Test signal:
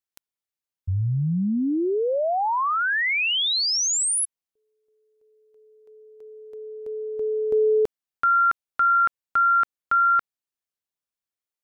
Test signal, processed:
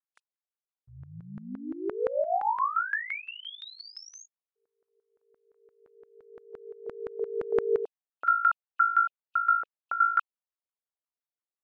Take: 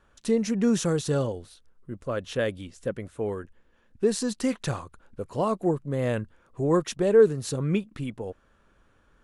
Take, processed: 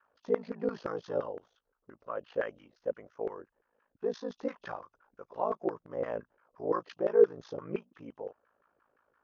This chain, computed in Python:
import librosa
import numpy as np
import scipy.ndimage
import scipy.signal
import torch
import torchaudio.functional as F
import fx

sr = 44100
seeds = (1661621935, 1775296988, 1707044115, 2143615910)

y = fx.freq_compress(x, sr, knee_hz=2500.0, ratio=1.5)
y = y * np.sin(2.0 * np.pi * 27.0 * np.arange(len(y)) / sr)
y = fx.filter_lfo_bandpass(y, sr, shape='saw_down', hz=5.8, low_hz=450.0, high_hz=1500.0, q=2.1)
y = y * 10.0 ** (2.0 / 20.0)